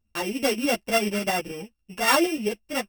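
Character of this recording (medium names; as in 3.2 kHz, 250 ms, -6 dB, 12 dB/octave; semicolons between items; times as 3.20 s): a buzz of ramps at a fixed pitch in blocks of 16 samples; tremolo saw up 9.3 Hz, depth 45%; a shimmering, thickened sound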